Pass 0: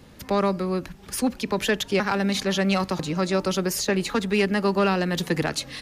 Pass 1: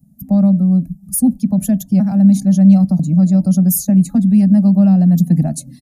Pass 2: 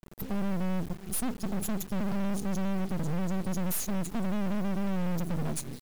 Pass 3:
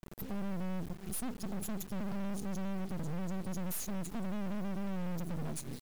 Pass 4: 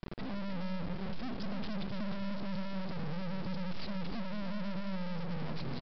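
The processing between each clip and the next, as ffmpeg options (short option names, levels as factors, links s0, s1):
-af "highshelf=f=6500:g=8.5,afftdn=nr=19:nf=-33,firequalizer=gain_entry='entry(100,0);entry(170,13);entry(250,8);entry(410,-26);entry(660,1);entry(970,-22);entry(3100,-26);entry(6800,-5);entry(11000,5)':delay=0.05:min_phase=1,volume=1.78"
-af "acompressor=threshold=0.178:ratio=3,asoftclip=type=tanh:threshold=0.0531,acrusher=bits=5:dc=4:mix=0:aa=0.000001,volume=1.12"
-af "alimiter=level_in=2.51:limit=0.0631:level=0:latency=1:release=242,volume=0.398,volume=1.12"
-af "aresample=11025,aeval=exprs='clip(val(0),-1,0.0075)':c=same,aresample=44100,aecho=1:1:305:0.376,volume=2.99"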